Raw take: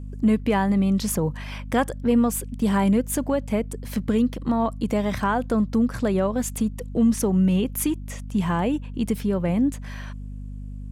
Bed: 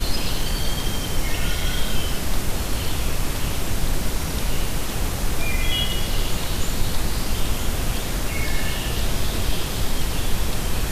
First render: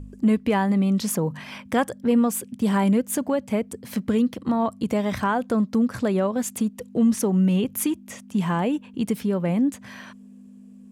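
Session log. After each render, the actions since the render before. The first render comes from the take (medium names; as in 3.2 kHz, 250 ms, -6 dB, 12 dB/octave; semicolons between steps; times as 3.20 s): de-hum 50 Hz, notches 3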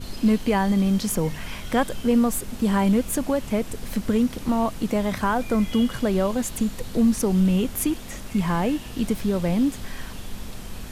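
add bed -13 dB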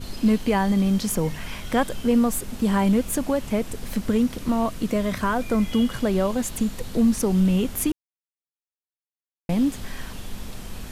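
4.37–5.49 s: band-stop 830 Hz, Q 6.1; 7.92–9.49 s: mute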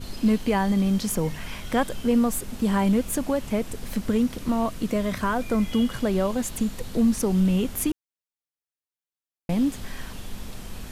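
trim -1.5 dB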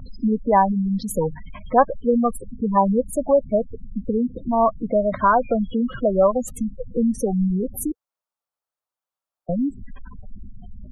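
spectral gate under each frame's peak -15 dB strong; high-order bell 850 Hz +11.5 dB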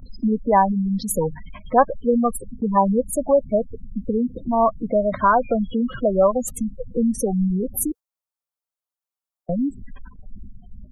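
gate -35 dBFS, range -7 dB; treble shelf 5.3 kHz +7.5 dB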